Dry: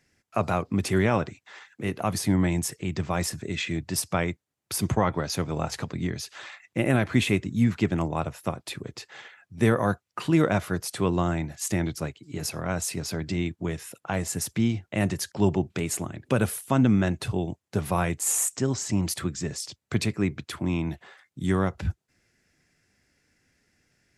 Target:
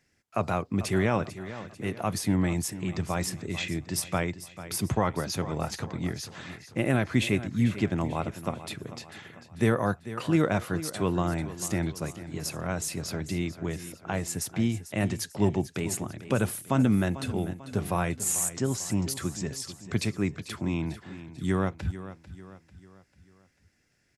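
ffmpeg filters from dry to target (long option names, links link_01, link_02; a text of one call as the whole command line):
ffmpeg -i in.wav -af "aecho=1:1:444|888|1332|1776:0.2|0.0918|0.0422|0.0194,volume=-2.5dB" out.wav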